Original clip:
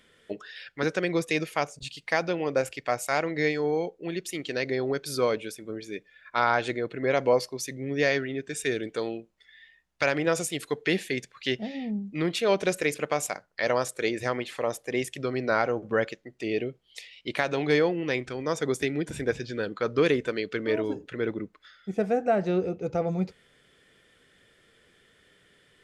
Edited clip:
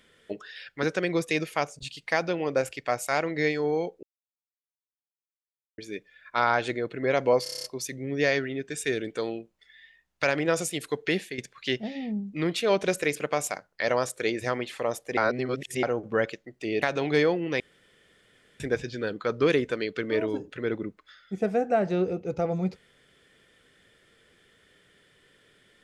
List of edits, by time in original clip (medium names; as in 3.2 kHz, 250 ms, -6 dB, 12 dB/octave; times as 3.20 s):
4.03–5.78 s: mute
7.43 s: stutter 0.03 s, 8 plays
10.76–11.17 s: fade out equal-power, to -10 dB
14.96–15.62 s: reverse
16.61–17.38 s: delete
18.16–19.16 s: room tone